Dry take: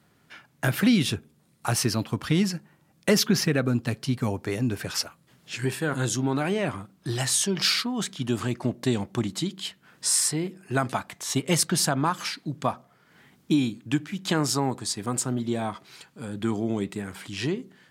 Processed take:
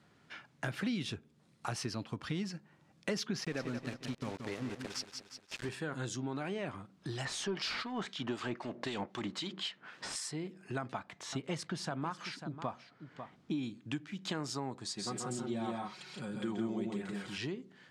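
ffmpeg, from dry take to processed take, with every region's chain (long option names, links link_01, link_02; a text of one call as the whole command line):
ffmpeg -i in.wav -filter_complex "[0:a]asettb=1/sr,asplit=3[link_01][link_02][link_03];[link_01]atrim=end=3.394[link_04];[link_02]atrim=start=3.39:end=5.69,asetpts=PTS-STARTPTS,afade=type=in:duration=0.004:curve=qsin,afade=type=out:start_time=2.296:duration=0.004:curve=qsin,highpass=frequency=160:poles=1,aeval=exprs='val(0)*gte(abs(val(0)),0.0266)':channel_layout=same,aecho=1:1:177|354|531|708:0.355|0.128|0.046|0.0166,atrim=end_sample=101430[link_05];[link_03]atrim=start=5.686[link_06];[link_04][link_05]acrossfade=duration=0.004:curve1=hsin:curve2=qsin[link_07];[link_07][link_06]acrossfade=duration=0.004:curve1=qsin:curve2=hsin,asettb=1/sr,asplit=3[link_08][link_09][link_10];[link_08]atrim=end=7.254[link_11];[link_09]atrim=start=7.25:end=10.16,asetpts=PTS-STARTPTS,afade=type=in:duration=0.004:curve=qsin,afade=type=out:start_time=2.906:duration=0.004:curve=qsin,asplit=2[link_12][link_13];[link_13]highpass=frequency=720:poles=1,volume=21dB,asoftclip=type=tanh:threshold=-9.5dB[link_14];[link_12][link_14]amix=inputs=2:normalize=0,lowpass=frequency=2100:poles=1,volume=-6dB,acrossover=split=2100[link_15][link_16];[link_15]aeval=exprs='val(0)*(1-0.7/2+0.7/2*cos(2*PI*3.9*n/s))':channel_layout=same[link_17];[link_16]aeval=exprs='val(0)*(1-0.7/2-0.7/2*cos(2*PI*3.9*n/s))':channel_layout=same[link_18];[link_17][link_18]amix=inputs=2:normalize=0[link_19];[link_10]atrim=start=10.156[link_20];[link_11][link_19]acrossfade=duration=0.004:curve1=hsin:curve2=qsin[link_21];[link_21][link_20]acrossfade=duration=0.004:curve1=qsin:curve2=hsin,asettb=1/sr,asplit=3[link_22][link_23][link_24];[link_22]atrim=end=10.784[link_25];[link_23]atrim=start=10.78:end=13.63,asetpts=PTS-STARTPTS,afade=type=in:duration=0.004:curve=qsin,afade=type=out:start_time=2.846:duration=0.004:curve=qsin,highshelf=frequency=5000:gain=-9.5,aecho=1:1:545:0.158,atrim=end_sample=125685[link_26];[link_24]atrim=start=13.626[link_27];[link_25][link_26]acrossfade=duration=0.004:curve1=hsin:curve2=qsin[link_28];[link_28][link_27]acrossfade=duration=0.004:curve1=qsin:curve2=hsin,asettb=1/sr,asplit=3[link_29][link_30][link_31];[link_29]atrim=end=14.854[link_32];[link_30]atrim=start=14.85:end=17.38,asetpts=PTS-STARTPTS,afade=type=in:duration=0.004:curve=qsin,afade=type=out:start_time=2.526:duration=0.004:curve=qsin,aecho=1:1:5.5:0.65,atrim=end_sample=111573,aecho=1:1:131|166:0.596|0.631,atrim=end_sample=111573[link_33];[link_31]atrim=start=17.376[link_34];[link_32][link_33]acrossfade=duration=0.004:curve1=hsin:curve2=qsin[link_35];[link_35][link_34]acrossfade=duration=0.004:curve1=qsin:curve2=hsin,acompressor=threshold=-40dB:ratio=2,lowpass=6400,lowshelf=frequency=130:gain=-3.5,volume=-2dB" out.wav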